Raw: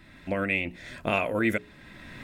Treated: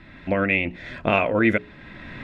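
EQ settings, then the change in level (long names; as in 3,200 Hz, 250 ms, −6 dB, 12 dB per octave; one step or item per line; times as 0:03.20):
low-pass filter 3,300 Hz 12 dB per octave
+6.5 dB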